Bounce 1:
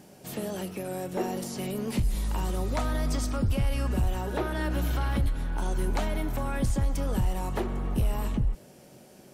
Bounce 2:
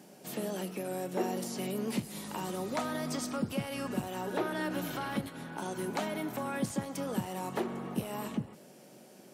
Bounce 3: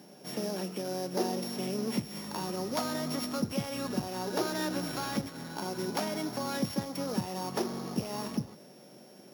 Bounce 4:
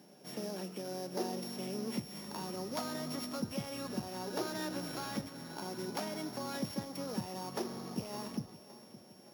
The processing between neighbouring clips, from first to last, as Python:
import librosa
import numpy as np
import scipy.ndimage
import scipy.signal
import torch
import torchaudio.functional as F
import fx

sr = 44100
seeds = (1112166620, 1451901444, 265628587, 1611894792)

y1 = scipy.signal.sosfilt(scipy.signal.butter(4, 160.0, 'highpass', fs=sr, output='sos'), x)
y1 = y1 * librosa.db_to_amplitude(-2.0)
y2 = np.r_[np.sort(y1[:len(y1) // 8 * 8].reshape(-1, 8), axis=1).ravel(), y1[len(y1) // 8 * 8:]]
y2 = y2 * librosa.db_to_amplitude(1.5)
y3 = fx.echo_feedback(y2, sr, ms=564, feedback_pct=51, wet_db=-17)
y3 = y3 * librosa.db_to_amplitude(-6.0)